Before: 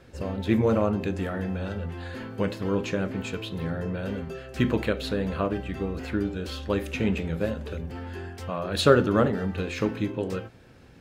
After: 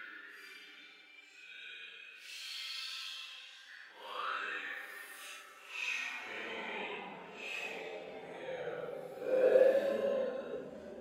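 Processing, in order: high-pass sweep 2.3 kHz -> 380 Hz, 6.48–7.61 s; Paulstretch 7.4×, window 0.05 s, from 6.15 s; trim -7.5 dB

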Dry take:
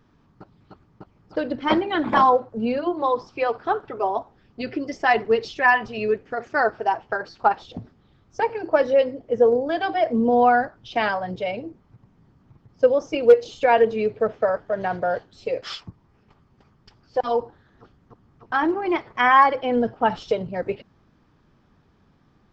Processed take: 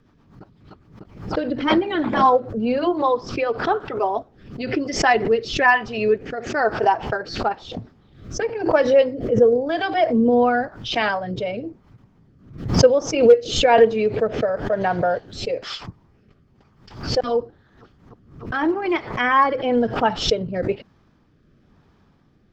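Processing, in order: rotary cabinet horn 8 Hz, later 1 Hz, at 1.62 s; swell ahead of each attack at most 100 dB/s; trim +4 dB

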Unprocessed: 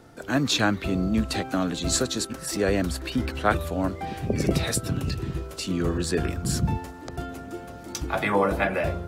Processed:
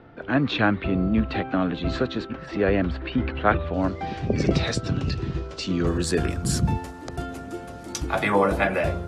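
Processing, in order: low-pass 3.1 kHz 24 dB/octave, from 3.74 s 5.8 kHz, from 5.87 s 12 kHz; trim +2 dB

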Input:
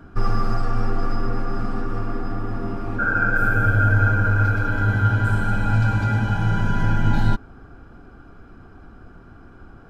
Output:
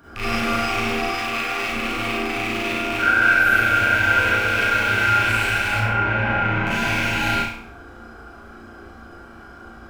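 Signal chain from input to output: rattle on loud lows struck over -28 dBFS, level -17 dBFS; 1.03–1.68 s: bass shelf 410 Hz -9.5 dB; 5.75–6.67 s: low-pass 1.5 kHz 12 dB/octave; tilt EQ +2.5 dB/octave; peak limiter -16.5 dBFS, peak gain reduction 8 dB; flutter echo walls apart 6 m, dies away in 0.51 s; reverberation RT60 0.50 s, pre-delay 33 ms, DRR -8 dB; trim -2.5 dB

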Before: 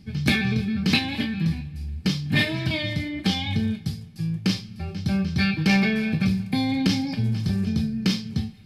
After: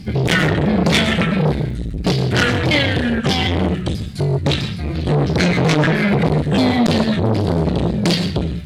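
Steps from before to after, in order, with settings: sawtooth pitch modulation -5.5 st, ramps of 658 ms; crackle 28 per s -52 dBFS; sine folder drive 10 dB, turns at -7 dBFS; on a send at -9 dB: reverberation RT60 0.35 s, pre-delay 108 ms; on the sum: transformer saturation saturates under 630 Hz; trim +1 dB

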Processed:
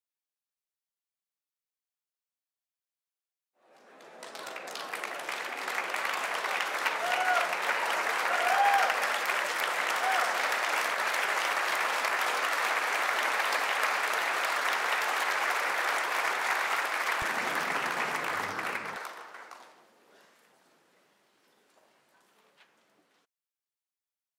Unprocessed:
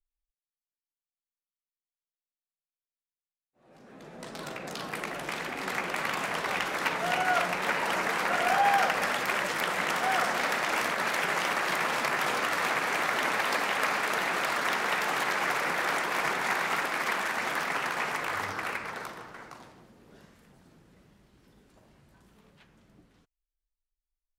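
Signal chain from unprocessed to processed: high-pass 510 Hz 12 dB/octave, from 17.22 s 130 Hz, from 18.96 s 530 Hz

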